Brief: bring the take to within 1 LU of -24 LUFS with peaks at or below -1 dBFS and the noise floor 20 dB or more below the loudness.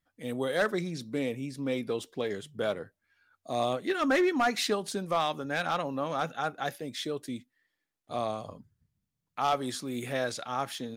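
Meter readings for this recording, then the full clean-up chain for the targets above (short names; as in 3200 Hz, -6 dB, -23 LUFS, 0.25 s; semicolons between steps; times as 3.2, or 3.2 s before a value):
clipped 0.4%; flat tops at -19.5 dBFS; loudness -31.5 LUFS; peak -19.5 dBFS; loudness target -24.0 LUFS
-> clip repair -19.5 dBFS; gain +7.5 dB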